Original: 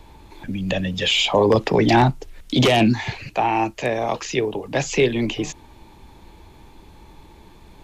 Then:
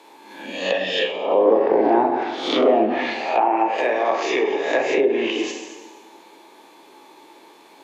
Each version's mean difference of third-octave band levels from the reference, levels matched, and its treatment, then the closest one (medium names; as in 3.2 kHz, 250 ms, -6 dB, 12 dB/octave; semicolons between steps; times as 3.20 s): 9.5 dB: reverse spectral sustain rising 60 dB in 0.67 s; high-pass 320 Hz 24 dB/octave; plate-style reverb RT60 1.4 s, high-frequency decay 0.85×, DRR 2.5 dB; low-pass that closes with the level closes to 750 Hz, closed at -11.5 dBFS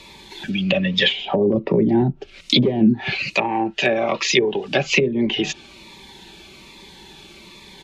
6.5 dB: comb 5.2 ms, depth 46%; low-pass that closes with the level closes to 350 Hz, closed at -13 dBFS; frequency weighting D; Shepard-style phaser falling 1.2 Hz; trim +4 dB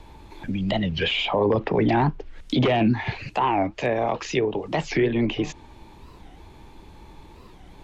4.0 dB: low-pass that closes with the level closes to 2.4 kHz, closed at -17.5 dBFS; peak limiter -12.5 dBFS, peak gain reduction 6.5 dB; treble shelf 5.9 kHz -4.5 dB; warped record 45 rpm, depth 250 cents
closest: third